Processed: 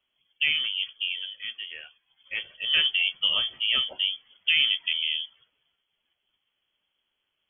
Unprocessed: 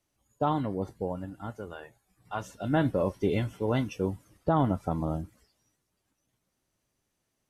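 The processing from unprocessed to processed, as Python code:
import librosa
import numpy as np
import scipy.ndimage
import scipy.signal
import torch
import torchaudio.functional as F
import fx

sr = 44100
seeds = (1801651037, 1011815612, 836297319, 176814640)

y = fx.freq_invert(x, sr, carrier_hz=3300)
y = y * 10.0 ** (2.0 / 20.0)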